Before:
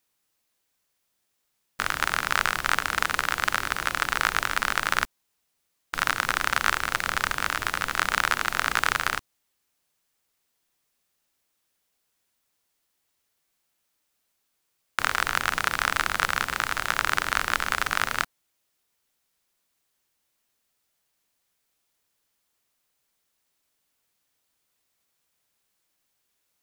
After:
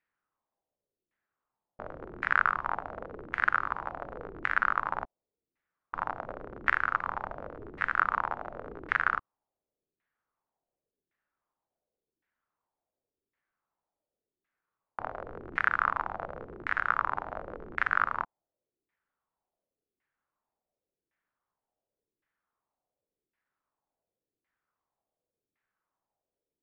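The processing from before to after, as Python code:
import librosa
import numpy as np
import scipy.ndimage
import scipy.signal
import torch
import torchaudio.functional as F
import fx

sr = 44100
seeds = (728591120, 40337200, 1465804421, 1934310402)

y = fx.filter_lfo_lowpass(x, sr, shape='saw_down', hz=0.9, low_hz=330.0, high_hz=2000.0, q=3.3)
y = y * 10.0 ** (-8.0 / 20.0)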